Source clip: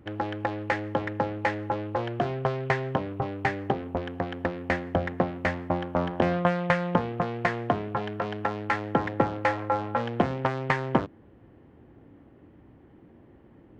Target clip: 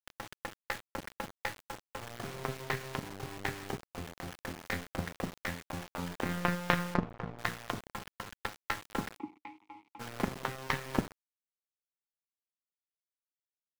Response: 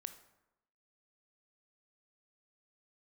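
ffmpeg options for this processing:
-filter_complex "[0:a]asplit=2[link_01][link_02];[link_02]acompressor=threshold=-37dB:ratio=8,volume=-3dB[link_03];[link_01][link_03]amix=inputs=2:normalize=0,equalizer=frequency=680:width=2.5:gain=-10.5,acrossover=split=420|3900[link_04][link_05][link_06];[link_04]adelay=30[link_07];[link_06]adelay=240[link_08];[link_07][link_05][link_08]amix=inputs=3:normalize=0[link_09];[1:a]atrim=start_sample=2205,afade=type=out:start_time=0.45:duration=0.01,atrim=end_sample=20286[link_10];[link_09][link_10]afir=irnorm=-1:irlink=0,aeval=exprs='0.211*(cos(1*acos(clip(val(0)/0.211,-1,1)))-cos(1*PI/2))+0.0376*(cos(2*acos(clip(val(0)/0.211,-1,1)))-cos(2*PI/2))+0.0473*(cos(3*acos(clip(val(0)/0.211,-1,1)))-cos(3*PI/2))+0.00531*(cos(7*acos(clip(val(0)/0.211,-1,1)))-cos(7*PI/2))':channel_layout=same,asettb=1/sr,asplit=3[link_11][link_12][link_13];[link_11]atrim=end=3.844[link_14];[link_12]atrim=start=3.84:end=4.87,asetpts=PTS-STARTPTS,afade=type=in:duration=0.004:curve=qsin,afade=type=out:start_time=1.026:duration=0.004:curve=qsin,asplit=2[link_15][link_16];[link_16]adelay=23,volume=-8dB[link_17];[link_15][link_17]amix=inputs=2:normalize=0,atrim=end_sample=45423[link_18];[link_13]atrim=start=4.866[link_19];[link_14][link_18]acrossfade=duration=0.004:curve1=hsin:curve2=qsin[link_20];[link_20][link_19]acrossfade=duration=0.004:curve1=qsin:curve2=hsin,acrusher=bits=7:mix=0:aa=0.000001,asettb=1/sr,asplit=3[link_21][link_22][link_23];[link_21]atrim=end=6.944[link_24];[link_22]atrim=start=6.94:end=7.39,asetpts=PTS-STARTPTS,afade=type=in:duration=0.004:curve=qsin,afade=type=out:start_time=0.446:duration=0.004:curve=qsin,adynamicsmooth=sensitivity=4.5:basefreq=1300[link_25];[link_23]atrim=start=7.386[link_26];[link_24][link_25]acrossfade=duration=0.004:curve1=hsin:curve2=qsin[link_27];[link_27][link_26]acrossfade=duration=0.004:curve1=qsin:curve2=hsin,asplit=3[link_28][link_29][link_30];[link_28]afade=type=out:start_time=9.16:duration=0.02[link_31];[link_29]asplit=3[link_32][link_33][link_34];[link_32]bandpass=frequency=300:width_type=q:width=8,volume=0dB[link_35];[link_33]bandpass=frequency=870:width_type=q:width=8,volume=-6dB[link_36];[link_34]bandpass=frequency=2240:width_type=q:width=8,volume=-9dB[link_37];[link_35][link_36][link_37]amix=inputs=3:normalize=0,afade=type=in:start_time=9.16:duration=0.02,afade=type=out:start_time=9.99:duration=0.02[link_38];[link_30]afade=type=in:start_time=9.99:duration=0.02[link_39];[link_31][link_38][link_39]amix=inputs=3:normalize=0,volume=5.5dB"

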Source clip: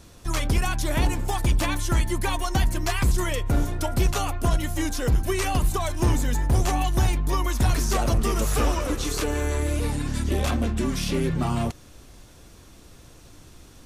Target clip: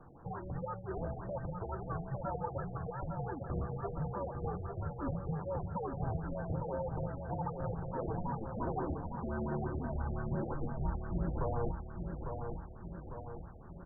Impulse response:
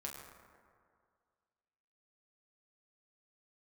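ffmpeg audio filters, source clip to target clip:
-filter_complex "[0:a]highpass=frequency=270:poles=1,aemphasis=mode=production:type=75kf,alimiter=limit=-21.5dB:level=0:latency=1:release=435,afreqshift=-220,asuperstop=centerf=2200:order=4:qfactor=1.2,asplit=2[link_01][link_02];[link_02]aecho=0:1:851|1702|2553|3404|4255|5106|5957:0.501|0.276|0.152|0.0834|0.0459|0.0252|0.0139[link_03];[link_01][link_03]amix=inputs=2:normalize=0,afftfilt=real='re*lt(b*sr/1024,750*pow(2000/750,0.5+0.5*sin(2*PI*5.8*pts/sr)))':imag='im*lt(b*sr/1024,750*pow(2000/750,0.5+0.5*sin(2*PI*5.8*pts/sr)))':win_size=1024:overlap=0.75"

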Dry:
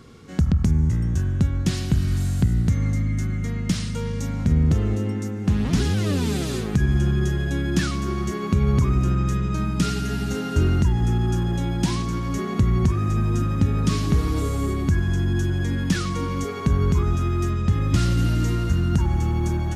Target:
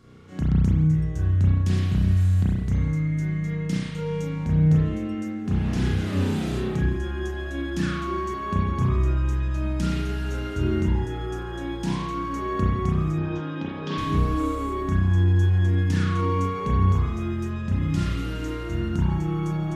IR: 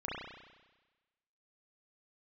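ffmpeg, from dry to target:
-filter_complex "[0:a]asettb=1/sr,asplit=3[link_01][link_02][link_03];[link_01]atrim=end=13.184[link_04];[link_02]atrim=start=13.18:end=13.98,asetpts=PTS-STARTPTS,afade=type=in:duration=0.004:curve=qsin,afade=type=out:start_time=0.796:duration=0.004:curve=qsin,highpass=270,equalizer=frequency=330:width_type=q:width=4:gain=6,equalizer=frequency=530:width_type=q:width=4:gain=4,equalizer=frequency=860:width_type=q:width=4:gain=7,equalizer=frequency=1600:width_type=q:width=4:gain=4,equalizer=frequency=3300:width_type=q:width=4:gain=8,lowpass=frequency=5100:width=0.5412,lowpass=frequency=5100:width=1.3066[link_05];[link_03]atrim=start=13.976[link_06];[link_04][link_05]acrossfade=duration=0.004:curve1=hsin:curve2=qsin[link_07];[link_07][link_06]acrossfade=duration=0.004:curve1=qsin:curve2=hsin[link_08];[1:a]atrim=start_sample=2205,afade=type=out:start_time=0.27:duration=0.01,atrim=end_sample=12348[link_09];[link_08][link_09]afir=irnorm=-1:irlink=0,volume=-5.5dB"

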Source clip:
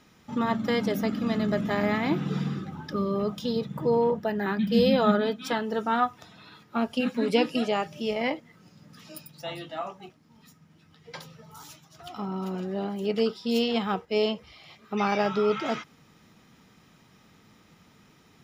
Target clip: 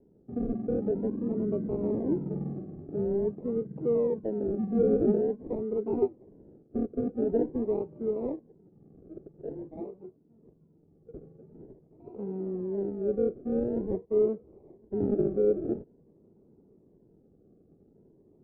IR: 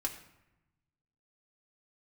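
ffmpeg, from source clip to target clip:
-af "acrusher=samples=36:mix=1:aa=0.000001:lfo=1:lforange=21.6:lforate=0.47,asoftclip=type=tanh:threshold=-11.5dB,lowpass=frequency=400:width_type=q:width=3.4,volume=-6.5dB"

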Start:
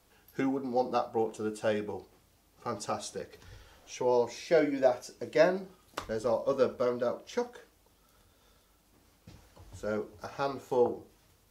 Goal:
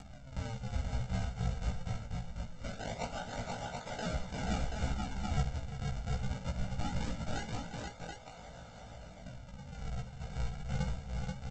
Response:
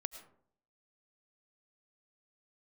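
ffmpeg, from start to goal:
-af "asetrate=74167,aresample=44100,atempo=0.594604,aexciter=amount=15.7:drive=4.6:freq=6000,aresample=16000,acrusher=samples=31:mix=1:aa=0.000001:lfo=1:lforange=49.6:lforate=0.22,aresample=44100,aecho=1:1:1.4:0.87,acompressor=threshold=-40dB:ratio=2,aecho=1:1:64|353|481|731:0.2|0.266|0.668|0.596,acompressor=mode=upward:threshold=-40dB:ratio=2.5,flanger=delay=15:depth=2.9:speed=0.19,volume=1.5dB"

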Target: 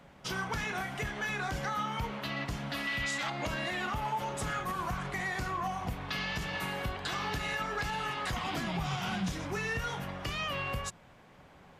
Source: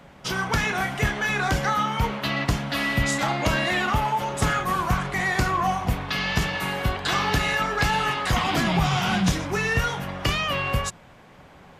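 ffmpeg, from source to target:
ffmpeg -i in.wav -filter_complex "[0:a]asettb=1/sr,asplit=3[link_01][link_02][link_03];[link_01]atrim=end=2.874[link_04];[link_02]atrim=start=2.87:end=3.3,asetpts=PTS-STARTPTS,afade=type=in:duration=0.004:curve=qsin,afade=type=out:start_time=0.426:duration=0.004:curve=qsin,equalizer=frequency=2900:width_type=o:width=2.8:gain=11[link_05];[link_03]atrim=start=3.296[link_06];[link_04][link_05]acrossfade=duration=0.004:curve1=hsin:curve2=qsin[link_07];[link_07][link_06]acrossfade=duration=0.004:curve1=qsin:curve2=hsin,alimiter=limit=-17.5dB:level=0:latency=1:release=165,volume=-7.5dB" out.wav

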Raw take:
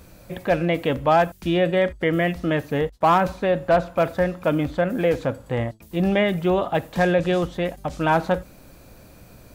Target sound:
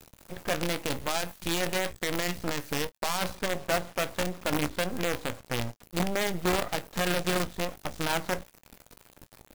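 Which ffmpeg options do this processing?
ffmpeg -i in.wav -filter_complex "[0:a]asettb=1/sr,asplit=3[link_01][link_02][link_03];[link_01]atrim=end=0.944[link_04];[link_02]atrim=start=0.94:end=3.35,asetpts=PTS-STARTPTS,afade=type=in:duration=0.004:curve=qsin,afade=type=out:start_time=2.406:duration=0.004:curve=qsin,highshelf=frequency=2800:gain=11[link_05];[link_03]atrim=start=3.346[link_06];[link_04][link_05]acrossfade=duration=0.004:curve1=hsin:curve2=qsin[link_07];[link_07][link_06]acrossfade=duration=0.004:curve1=qsin:curve2=hsin,alimiter=limit=-16dB:level=0:latency=1:release=31,acrusher=bits=4:dc=4:mix=0:aa=0.000001,aecho=1:1:17|27:0.178|0.141,volume=-5dB" out.wav

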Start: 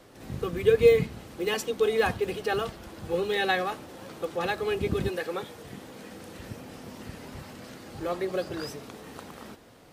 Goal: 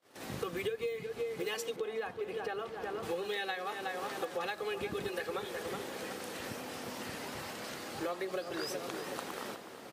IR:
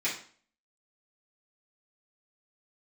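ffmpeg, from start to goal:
-filter_complex "[0:a]lowshelf=frequency=440:gain=-5.5,asplit=2[link_01][link_02];[link_02]adelay=368,lowpass=frequency=2000:poles=1,volume=-10dB,asplit=2[link_03][link_04];[link_04]adelay=368,lowpass=frequency=2000:poles=1,volume=0.46,asplit=2[link_05][link_06];[link_06]adelay=368,lowpass=frequency=2000:poles=1,volume=0.46,asplit=2[link_07][link_08];[link_08]adelay=368,lowpass=frequency=2000:poles=1,volume=0.46,asplit=2[link_09][link_10];[link_10]adelay=368,lowpass=frequency=2000:poles=1,volume=0.46[link_11];[link_01][link_03][link_05][link_07][link_09][link_11]amix=inputs=6:normalize=0,agate=range=-29dB:threshold=-54dB:ratio=16:detection=peak,highpass=frequency=290:poles=1,acompressor=threshold=-38dB:ratio=16,asettb=1/sr,asplit=3[link_12][link_13][link_14];[link_12]atrim=end=1.764[link_15];[link_13]atrim=start=1.76:end=3.03,asetpts=PTS-STARTPTS,afade=type=in:duration=0.004:curve=qsin,afade=type=out:start_time=1.266:duration=0.004:curve=qsin,highshelf=frequency=2800:gain=-11[link_16];[link_14]atrim=start=3.026[link_17];[link_15][link_16]acrossfade=duration=0.004:curve1=hsin:curve2=qsin[link_18];[link_18][link_17]acrossfade=duration=0.004:curve1=qsin:curve2=hsin,volume=5dB"

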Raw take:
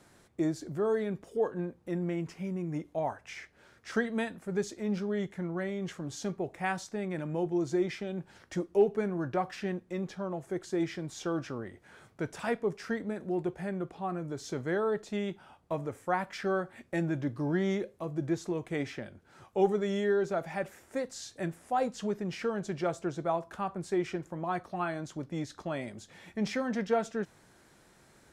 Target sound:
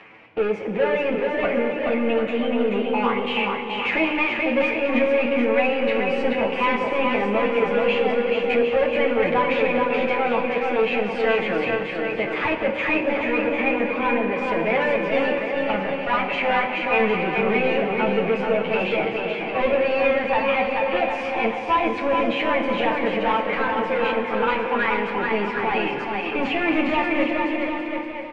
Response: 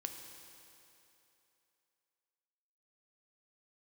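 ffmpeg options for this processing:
-filter_complex "[0:a]agate=range=-41dB:threshold=-49dB:ratio=16:detection=peak,acompressor=mode=upward:threshold=-34dB:ratio=2.5,asplit=2[link_01][link_02];[link_02]highpass=frequency=720:poles=1,volume=27dB,asoftclip=type=tanh:threshold=-14dB[link_03];[link_01][link_03]amix=inputs=2:normalize=0,lowpass=frequency=1200:poles=1,volume=-6dB,asetrate=58866,aresample=44100,atempo=0.749154,lowpass=frequency=2500:width_type=q:width=3.4,asplit=2[link_04][link_05];[link_05]adelay=25,volume=-12dB[link_06];[link_04][link_06]amix=inputs=2:normalize=0,aecho=1:1:430|752.5|994.4|1176|1312:0.631|0.398|0.251|0.158|0.1,asplit=2[link_07][link_08];[1:a]atrim=start_sample=2205,lowshelf=frequency=430:gain=8.5,adelay=9[link_09];[link_08][link_09]afir=irnorm=-1:irlink=0,volume=4dB[link_10];[link_07][link_10]amix=inputs=2:normalize=0,volume=-6.5dB"

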